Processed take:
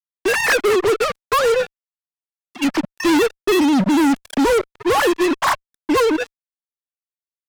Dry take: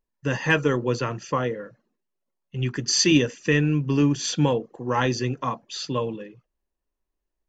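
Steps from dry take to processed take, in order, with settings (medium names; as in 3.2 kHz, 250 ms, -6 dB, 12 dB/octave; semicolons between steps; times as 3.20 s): formants replaced by sine waves; spectral selection erased 3.27–3.97 s, 670–2500 Hz; fuzz box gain 36 dB, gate -37 dBFS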